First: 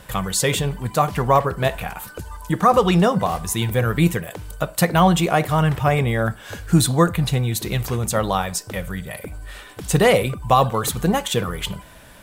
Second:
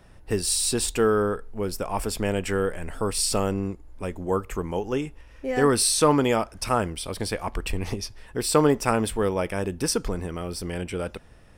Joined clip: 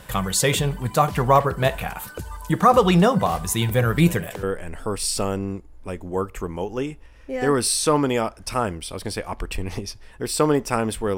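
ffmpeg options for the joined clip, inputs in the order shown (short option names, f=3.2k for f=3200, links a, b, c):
-filter_complex "[1:a]asplit=2[a][b];[0:a]apad=whole_dur=11.17,atrim=end=11.17,atrim=end=4.432[c];[b]atrim=start=2.578:end=9.32[d];[a]atrim=start=2.13:end=2.58,asetpts=PTS-STARTPTS,volume=-13.5dB,afade=t=in:d=0.004:c=hsin,afade=t=out:st=0.446:d=0.004:c=hsin,adelay=3980[e];[c][d]acrossfade=d=0.004:c1=hsin:c2=hsin[f];[f][e]amix=inputs=2:normalize=0"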